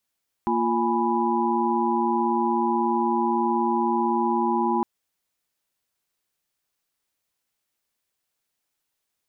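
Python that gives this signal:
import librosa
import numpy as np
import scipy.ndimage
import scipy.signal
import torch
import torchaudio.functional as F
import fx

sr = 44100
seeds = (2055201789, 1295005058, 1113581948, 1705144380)

y = fx.chord(sr, length_s=4.36, notes=(58, 65, 80, 83), wave='sine', level_db=-25.5)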